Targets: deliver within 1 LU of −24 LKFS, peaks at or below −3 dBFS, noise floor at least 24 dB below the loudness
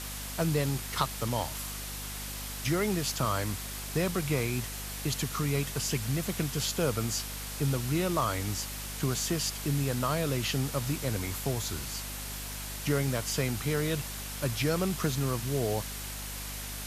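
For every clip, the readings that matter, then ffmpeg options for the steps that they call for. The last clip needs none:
mains hum 50 Hz; hum harmonics up to 250 Hz; level of the hum −39 dBFS; background noise floor −39 dBFS; target noise floor −56 dBFS; integrated loudness −31.5 LKFS; sample peak −12.0 dBFS; target loudness −24.0 LKFS
→ -af "bandreject=frequency=50:width_type=h:width=6,bandreject=frequency=100:width_type=h:width=6,bandreject=frequency=150:width_type=h:width=6,bandreject=frequency=200:width_type=h:width=6,bandreject=frequency=250:width_type=h:width=6"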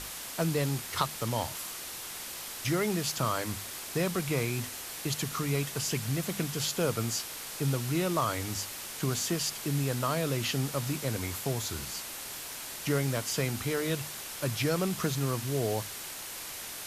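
mains hum none found; background noise floor −41 dBFS; target noise floor −56 dBFS
→ -af "afftdn=noise_reduction=15:noise_floor=-41"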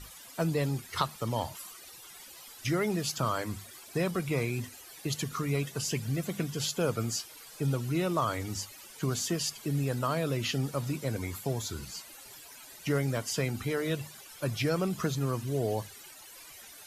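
background noise floor −50 dBFS; target noise floor −57 dBFS
→ -af "afftdn=noise_reduction=7:noise_floor=-50"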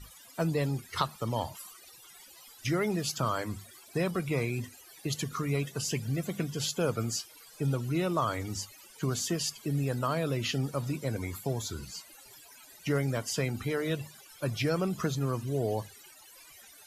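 background noise floor −54 dBFS; target noise floor −57 dBFS
→ -af "afftdn=noise_reduction=6:noise_floor=-54"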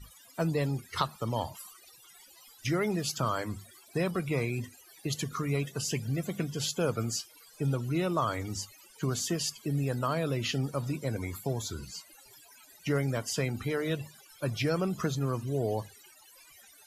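background noise floor −57 dBFS; integrated loudness −32.5 LKFS; sample peak −13.0 dBFS; target loudness −24.0 LKFS
→ -af "volume=8.5dB"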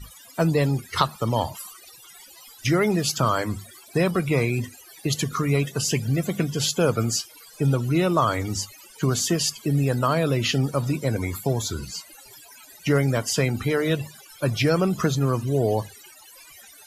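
integrated loudness −24.0 LKFS; sample peak −4.5 dBFS; background noise floor −48 dBFS

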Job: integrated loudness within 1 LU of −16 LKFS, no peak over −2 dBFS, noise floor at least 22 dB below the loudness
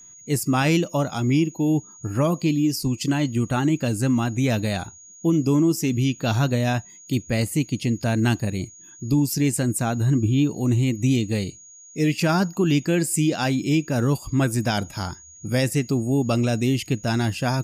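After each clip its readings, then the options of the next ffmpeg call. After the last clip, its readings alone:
interfering tone 6,700 Hz; level of the tone −44 dBFS; integrated loudness −22.5 LKFS; sample peak −11.0 dBFS; target loudness −16.0 LKFS
→ -af "bandreject=frequency=6700:width=30"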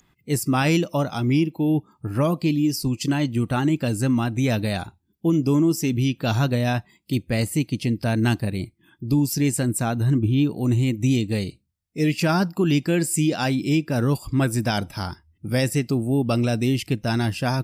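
interfering tone none found; integrated loudness −22.5 LKFS; sample peak −11.5 dBFS; target loudness −16.0 LKFS
→ -af "volume=6.5dB"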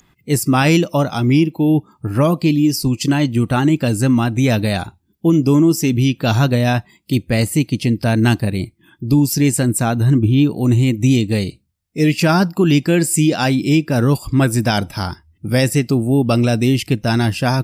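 integrated loudness −16.0 LKFS; sample peak −5.0 dBFS; background noise floor −60 dBFS

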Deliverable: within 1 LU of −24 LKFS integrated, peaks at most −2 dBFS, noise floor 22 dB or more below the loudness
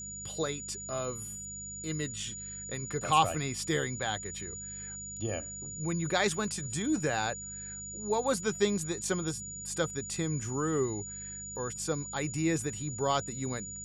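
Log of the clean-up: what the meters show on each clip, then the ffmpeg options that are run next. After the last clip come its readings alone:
mains hum 50 Hz; hum harmonics up to 200 Hz; level of the hum −47 dBFS; interfering tone 6,900 Hz; level of the tone −40 dBFS; integrated loudness −33.0 LKFS; sample peak −10.0 dBFS; target loudness −24.0 LKFS
→ -af "bandreject=frequency=50:width_type=h:width=4,bandreject=frequency=100:width_type=h:width=4,bandreject=frequency=150:width_type=h:width=4,bandreject=frequency=200:width_type=h:width=4"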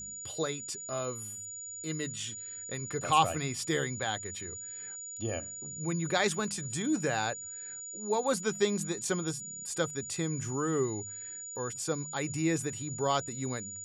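mains hum none found; interfering tone 6,900 Hz; level of the tone −40 dBFS
→ -af "bandreject=frequency=6900:width=30"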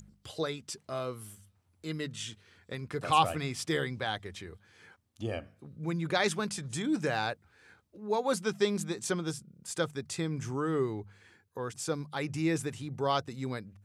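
interfering tone none found; integrated loudness −33.5 LKFS; sample peak −9.5 dBFS; target loudness −24.0 LKFS
→ -af "volume=9.5dB,alimiter=limit=-2dB:level=0:latency=1"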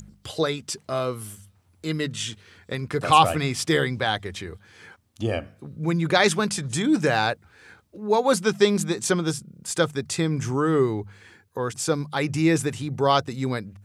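integrated loudness −24.0 LKFS; sample peak −2.0 dBFS; background noise floor −61 dBFS

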